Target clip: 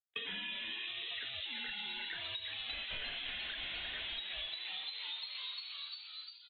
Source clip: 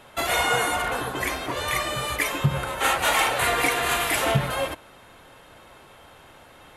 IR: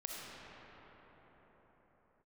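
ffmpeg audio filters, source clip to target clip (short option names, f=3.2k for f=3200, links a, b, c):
-filter_complex "[0:a]asplit=2[a][b];[b]aeval=exprs='(mod(8.41*val(0)+1,2)-1)/8.41':c=same,volume=-8.5dB[c];[a][c]amix=inputs=2:normalize=0,afftdn=nr=20:nf=-33,aeval=exprs='sgn(val(0))*max(abs(val(0))-0.00211,0)':c=same,lowpass=f=3.2k:t=q:w=0.5098,lowpass=f=3.2k:t=q:w=0.6013,lowpass=f=3.2k:t=q:w=0.9,lowpass=f=3.2k:t=q:w=2.563,afreqshift=-3800,asetrate=45938,aresample=44100,equalizer=f=1.1k:w=2.3:g=-10.5,asplit=2[d][e];[e]asplit=6[f][g][h][i][j][k];[f]adelay=349,afreqshift=130,volume=-5dB[l];[g]adelay=698,afreqshift=260,volume=-11.2dB[m];[h]adelay=1047,afreqshift=390,volume=-17.4dB[n];[i]adelay=1396,afreqshift=520,volume=-23.6dB[o];[j]adelay=1745,afreqshift=650,volume=-29.8dB[p];[k]adelay=2094,afreqshift=780,volume=-36dB[q];[l][m][n][o][p][q]amix=inputs=6:normalize=0[r];[d][r]amix=inputs=2:normalize=0,acompressor=threshold=-38dB:ratio=5,asubboost=boost=9.5:cutoff=62,acrossover=split=400[s][t];[t]acompressor=threshold=-47dB:ratio=3[u];[s][u]amix=inputs=2:normalize=0,volume=5dB"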